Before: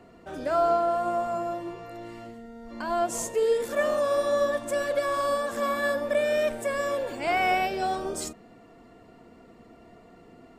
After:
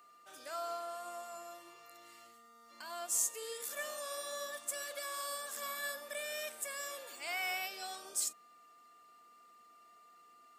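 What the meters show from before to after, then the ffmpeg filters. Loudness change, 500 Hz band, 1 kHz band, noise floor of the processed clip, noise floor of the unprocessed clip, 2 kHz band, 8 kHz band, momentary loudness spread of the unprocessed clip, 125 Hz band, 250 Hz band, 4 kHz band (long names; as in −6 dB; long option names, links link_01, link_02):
−12.0 dB, −20.5 dB, −16.5 dB, −62 dBFS, −53 dBFS, −10.5 dB, +1.5 dB, 16 LU, below −30 dB, −26.5 dB, −4.5 dB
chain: -af "aeval=exprs='val(0)+0.00562*sin(2*PI*1200*n/s)':channel_layout=same,aderivative,volume=1dB"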